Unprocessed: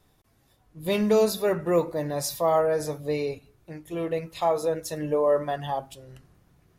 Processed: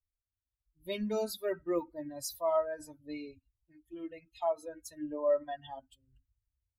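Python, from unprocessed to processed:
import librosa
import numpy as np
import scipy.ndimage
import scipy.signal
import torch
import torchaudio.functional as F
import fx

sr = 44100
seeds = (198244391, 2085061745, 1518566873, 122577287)

y = fx.bin_expand(x, sr, power=2.0)
y = y + 0.8 * np.pad(y, (int(3.2 * sr / 1000.0), 0))[:len(y)]
y = y * 10.0 ** (-8.5 / 20.0)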